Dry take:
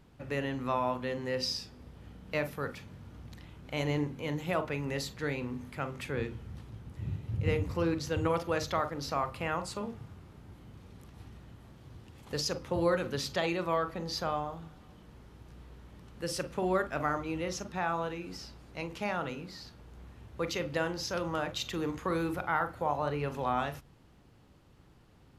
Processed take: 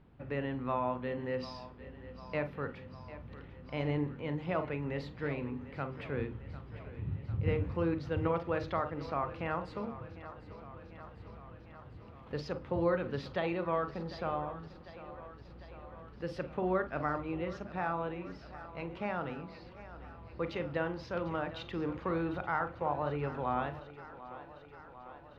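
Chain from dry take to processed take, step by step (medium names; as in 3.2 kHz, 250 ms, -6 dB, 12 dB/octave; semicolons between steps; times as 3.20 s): distance through air 360 m; thinning echo 749 ms, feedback 71%, high-pass 200 Hz, level -15 dB; trim -1 dB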